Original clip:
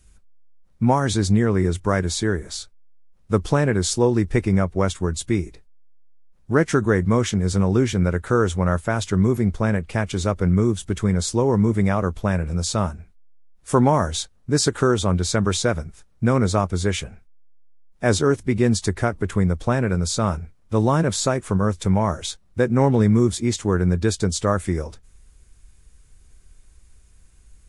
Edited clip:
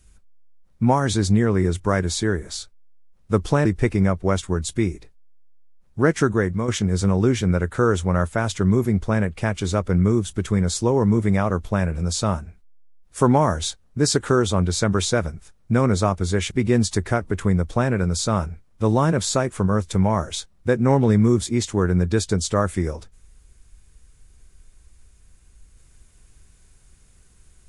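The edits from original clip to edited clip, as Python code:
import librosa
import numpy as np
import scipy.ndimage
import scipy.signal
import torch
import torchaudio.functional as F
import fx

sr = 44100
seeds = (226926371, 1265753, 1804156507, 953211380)

y = fx.edit(x, sr, fx.cut(start_s=3.65, length_s=0.52),
    fx.fade_out_to(start_s=6.79, length_s=0.41, floor_db=-8.0),
    fx.cut(start_s=17.03, length_s=1.39), tone=tone)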